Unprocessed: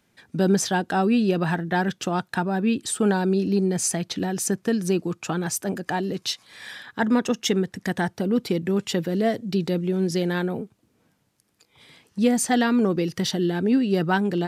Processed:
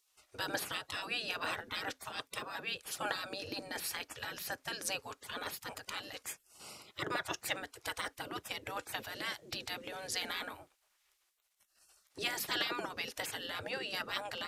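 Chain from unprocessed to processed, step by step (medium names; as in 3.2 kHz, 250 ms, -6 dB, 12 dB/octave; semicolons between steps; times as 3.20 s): spectral gate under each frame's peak -20 dB weak; on a send: reverberation RT60 0.15 s, pre-delay 3 ms, DRR 16.5 dB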